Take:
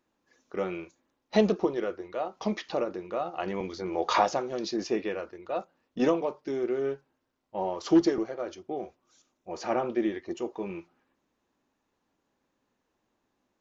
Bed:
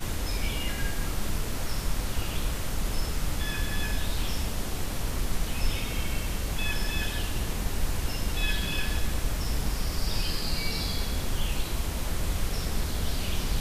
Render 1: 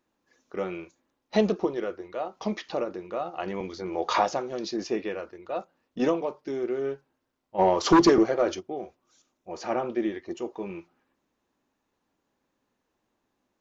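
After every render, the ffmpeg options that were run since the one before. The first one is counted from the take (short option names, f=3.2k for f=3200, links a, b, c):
-filter_complex "[0:a]asplit=3[a][b][c];[a]afade=t=out:st=7.58:d=0.02[d];[b]aeval=exprs='0.266*sin(PI/2*2.24*val(0)/0.266)':c=same,afade=t=in:st=7.58:d=0.02,afade=t=out:st=8.59:d=0.02[e];[c]afade=t=in:st=8.59:d=0.02[f];[d][e][f]amix=inputs=3:normalize=0"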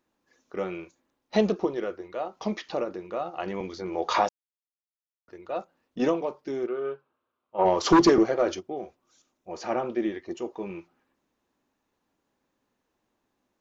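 -filter_complex "[0:a]asplit=3[a][b][c];[a]afade=t=out:st=6.66:d=0.02[d];[b]highpass=110,equalizer=f=120:t=q:w=4:g=-9,equalizer=f=180:t=q:w=4:g=-8,equalizer=f=280:t=q:w=4:g=-9,equalizer=f=800:t=q:w=4:g=-4,equalizer=f=1.2k:t=q:w=4:g=10,equalizer=f=1.9k:t=q:w=4:g=-9,lowpass=f=3.4k:w=0.5412,lowpass=f=3.4k:w=1.3066,afade=t=in:st=6.66:d=0.02,afade=t=out:st=7.64:d=0.02[e];[c]afade=t=in:st=7.64:d=0.02[f];[d][e][f]amix=inputs=3:normalize=0,asplit=3[g][h][i];[g]atrim=end=4.29,asetpts=PTS-STARTPTS,afade=t=out:st=4.286:d=0.004:c=hsin[j];[h]atrim=start=4.29:end=5.28,asetpts=PTS-STARTPTS,volume=0[k];[i]atrim=start=5.28,asetpts=PTS-STARTPTS,afade=t=in:d=0.004:c=hsin[l];[j][k][l]concat=n=3:v=0:a=1"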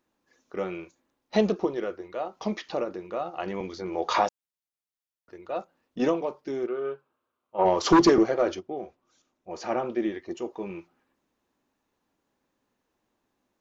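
-filter_complex "[0:a]asettb=1/sr,asplit=3[a][b][c];[a]atrim=end=8.484[d];[b]atrim=start=8.48:end=9.51,asetpts=PTS-STARTPTS,afade=t=in:d=0.004:c=qsin,afade=t=out:st=1.026:d=0.004:c=qsin,lowpass=f=3.9k:p=1[e];[c]atrim=start=9.506[f];[d][e]acrossfade=d=0.004:c1=hsin:c2=qsin[g];[g][f]acrossfade=d=0.004:c1=qsin:c2=hsin"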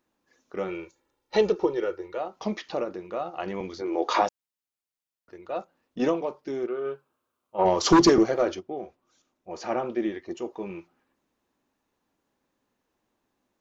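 -filter_complex "[0:a]asettb=1/sr,asplit=3[a][b][c];[a]atrim=end=0.684[d];[b]atrim=start=0.68:end=2.18,asetpts=PTS-STARTPTS,afade=t=in:d=0.004:c=qsin,afade=t=out:st=1.496:d=0.004:c=qsin,aecho=1:1:2.2:0.65,atrim=end_sample=66150[e];[c]atrim=start=2.176[f];[d][e]acrossfade=d=0.004:c1=hsin:c2=qsin[g];[g][f]acrossfade=d=0.004:c1=qsin:c2=hsin,asettb=1/sr,asplit=3[h][i][j];[h]atrim=end=3.814[k];[i]atrim=start=3.81:end=4.22,asetpts=PTS-STARTPTS,afade=t=in:d=0.004:c=qsin,afade=t=out:st=0.406:d=0.004:c=qsin,lowshelf=f=220:t=q:w=3:g=-8.5[l];[j]atrim=start=4.216[m];[k][l]acrossfade=d=0.004:c1=hsin:c2=qsin[n];[n][m]acrossfade=d=0.004:c1=qsin:c2=hsin,asettb=1/sr,asplit=3[o][p][q];[o]atrim=end=6.864[r];[p]atrim=start=6.86:end=8.45,asetpts=PTS-STARTPTS,afade=t=in:d=0.004:c=qsin,afade=t=out:st=1.586:d=0.004:c=qsin,bass=f=250:g=3,treble=f=4k:g=6[s];[q]atrim=start=8.446[t];[r][s]acrossfade=d=0.004:c1=hsin:c2=qsin[u];[u][t]acrossfade=d=0.004:c1=qsin:c2=hsin"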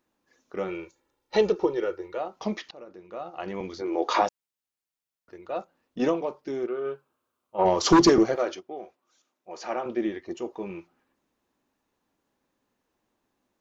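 -filter_complex "[0:a]asettb=1/sr,asplit=3[a][b][c];[a]atrim=end=8.354[d];[b]atrim=start=8.35:end=9.86,asetpts=PTS-STARTPTS,afade=t=in:d=0.004:c=qsin,afade=t=out:st=1.506:d=0.004:c=qsin,highpass=f=520:p=1[e];[c]atrim=start=9.856[f];[d][e]acrossfade=d=0.004:c1=hsin:c2=qsin[g];[g][f]acrossfade=d=0.004:c1=qsin:c2=hsin,asplit=2[h][i];[h]atrim=end=2.71,asetpts=PTS-STARTPTS,afade=t=out:st=2.706:d=0.004:c=hsin:silence=0.0668344[j];[i]atrim=start=2.71,asetpts=PTS-STARTPTS,afade=t=in:d=0.96:silence=0.0668344[k];[j][k]concat=n=2:v=0:a=1"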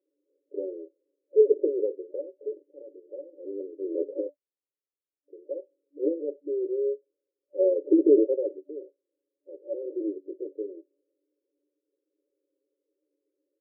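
-af "afftfilt=real='re*between(b*sr/4096,280,590)':imag='im*between(b*sr/4096,280,590)':win_size=4096:overlap=0.75,aecho=1:1:7.2:0.65"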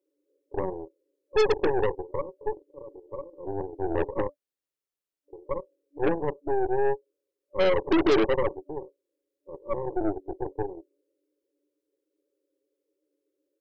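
-af "asoftclip=type=tanh:threshold=-14.5dB,aeval=exprs='0.188*(cos(1*acos(clip(val(0)/0.188,-1,1)))-cos(1*PI/2))+0.0237*(cos(5*acos(clip(val(0)/0.188,-1,1)))-cos(5*PI/2))+0.0106*(cos(7*acos(clip(val(0)/0.188,-1,1)))-cos(7*PI/2))+0.0376*(cos(8*acos(clip(val(0)/0.188,-1,1)))-cos(8*PI/2))':c=same"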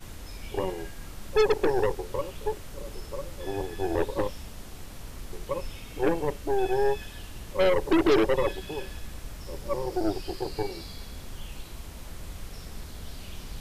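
-filter_complex "[1:a]volume=-11dB[a];[0:a][a]amix=inputs=2:normalize=0"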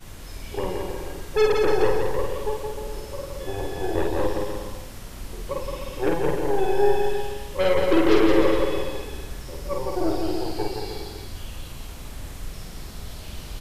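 -filter_complex "[0:a]asplit=2[a][b];[b]adelay=49,volume=-3dB[c];[a][c]amix=inputs=2:normalize=0,aecho=1:1:170|306|414.8|501.8|571.5:0.631|0.398|0.251|0.158|0.1"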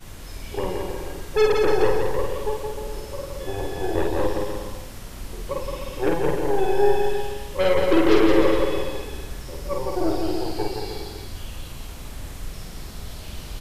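-af "volume=1dB"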